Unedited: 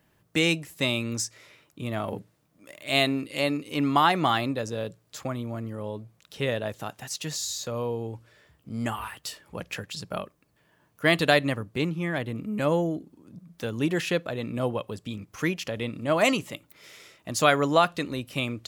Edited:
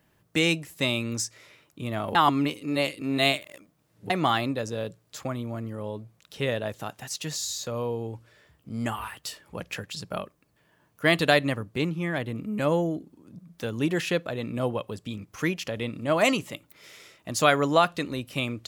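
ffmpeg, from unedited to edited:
ffmpeg -i in.wav -filter_complex "[0:a]asplit=3[link_01][link_02][link_03];[link_01]atrim=end=2.152[link_04];[link_02]atrim=start=2.148:end=4.102,asetpts=PTS-STARTPTS,areverse[link_05];[link_03]atrim=start=4.098[link_06];[link_04][link_05]acrossfade=duration=0.004:curve1=hsin:curve2=hsin[link_07];[link_07][link_06]acrossfade=duration=0.004:curve1=hsin:curve2=hsin" out.wav

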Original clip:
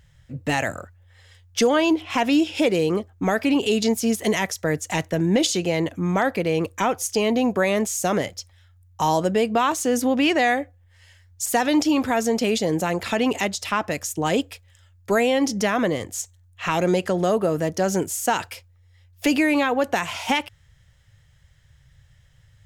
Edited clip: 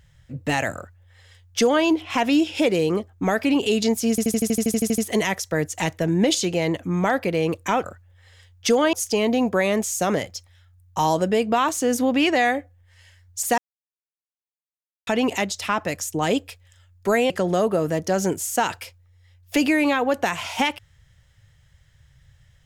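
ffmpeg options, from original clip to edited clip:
ffmpeg -i in.wav -filter_complex "[0:a]asplit=17[link_01][link_02][link_03][link_04][link_05][link_06][link_07][link_08][link_09][link_10][link_11][link_12][link_13][link_14][link_15][link_16][link_17];[link_01]atrim=end=4.182[link_18];[link_02]atrim=start=4.098:end=4.182[link_19];[link_03]atrim=start=4.098:end=4.182[link_20];[link_04]atrim=start=4.098:end=4.182[link_21];[link_05]atrim=start=4.098:end=4.182[link_22];[link_06]atrim=start=4.098:end=4.182[link_23];[link_07]atrim=start=4.098:end=4.182[link_24];[link_08]atrim=start=4.098:end=4.182[link_25];[link_09]atrim=start=4.098:end=4.182[link_26];[link_10]atrim=start=4.098:end=4.182[link_27];[link_11]atrim=start=4.098:end=4.182[link_28];[link_12]atrim=start=4.098:end=6.962[link_29];[link_13]atrim=start=0.758:end=1.852[link_30];[link_14]atrim=start=6.958:end=11.61,asetpts=PTS-STARTPTS,afade=type=out:start_time=4.648:duration=0.004:curve=hsin[link_31];[link_15]atrim=start=11.61:end=13.1,asetpts=PTS-STARTPTS,volume=0[link_32];[link_16]atrim=start=13.1:end=15.332,asetpts=PTS-STARTPTS,afade=type=in:duration=0.004:curve=hsin[link_33];[link_17]atrim=start=16.998[link_34];[link_18][link_19]acrossfade=duration=0.004:curve1=hsin:curve2=hsin[link_35];[link_35][link_20]acrossfade=duration=0.004:curve1=hsin:curve2=hsin[link_36];[link_36][link_21]acrossfade=duration=0.004:curve1=hsin:curve2=hsin[link_37];[link_37][link_22]acrossfade=duration=0.004:curve1=hsin:curve2=hsin[link_38];[link_38][link_23]acrossfade=duration=0.004:curve1=hsin:curve2=hsin[link_39];[link_39][link_24]acrossfade=duration=0.004:curve1=hsin:curve2=hsin[link_40];[link_40][link_25]acrossfade=duration=0.004:curve1=hsin:curve2=hsin[link_41];[link_41][link_26]acrossfade=duration=0.004:curve1=hsin:curve2=hsin[link_42];[link_42][link_27]acrossfade=duration=0.004:curve1=hsin:curve2=hsin[link_43];[link_43][link_28]acrossfade=duration=0.004:curve1=hsin:curve2=hsin[link_44];[link_44][link_29]acrossfade=duration=0.004:curve1=hsin:curve2=hsin[link_45];[link_45][link_30]acrossfade=duration=0.004:curve1=hsin:curve2=hsin[link_46];[link_31][link_32][link_33]concat=n=3:v=0:a=1[link_47];[link_46][link_47]acrossfade=duration=0.004:curve1=hsin:curve2=hsin[link_48];[link_48][link_34]acrossfade=duration=0.004:curve1=hsin:curve2=hsin" out.wav

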